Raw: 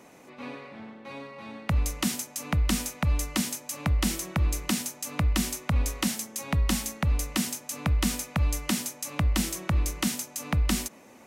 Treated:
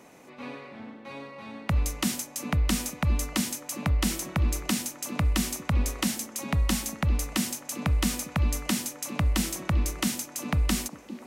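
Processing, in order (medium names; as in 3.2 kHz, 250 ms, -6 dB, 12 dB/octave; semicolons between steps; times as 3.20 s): repeats whose band climbs or falls 399 ms, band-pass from 300 Hz, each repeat 0.7 oct, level -8 dB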